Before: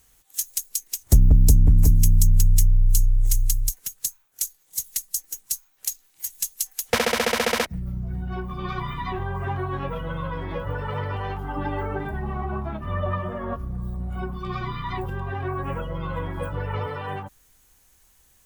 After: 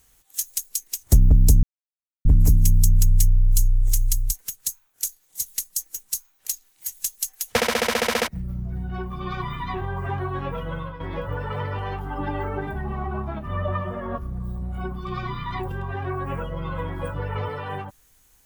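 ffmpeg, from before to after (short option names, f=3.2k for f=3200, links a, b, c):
-filter_complex "[0:a]asplit=3[a][b][c];[a]atrim=end=1.63,asetpts=PTS-STARTPTS,afade=t=out:st=1.626:d=0.004:c=hsin,apad=pad_dur=0.62[d];[b]atrim=start=1.63:end=10.38,asetpts=PTS-STARTPTS,afade=t=in:d=0.004:c=hsin,afade=t=out:st=8.5:d=0.25:silence=0.281838[e];[c]atrim=start=10.38,asetpts=PTS-STARTPTS,afade=t=in:d=0.004:c=hsin:silence=0.281838[f];[d][e][f]concat=n=3:v=0:a=1"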